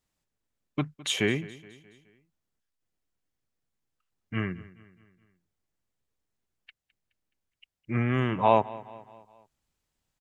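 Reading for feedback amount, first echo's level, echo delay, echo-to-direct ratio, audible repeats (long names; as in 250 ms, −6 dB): 50%, −19.5 dB, 211 ms, −18.5 dB, 3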